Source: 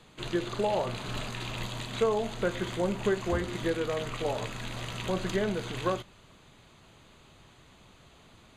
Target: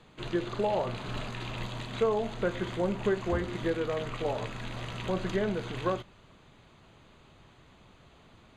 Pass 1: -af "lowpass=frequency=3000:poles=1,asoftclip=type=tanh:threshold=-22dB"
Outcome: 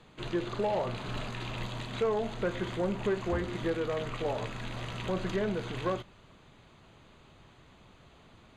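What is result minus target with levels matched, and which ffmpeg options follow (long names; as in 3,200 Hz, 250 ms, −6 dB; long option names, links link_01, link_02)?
soft clipping: distortion +17 dB
-af "lowpass=frequency=3000:poles=1,asoftclip=type=tanh:threshold=-11.5dB"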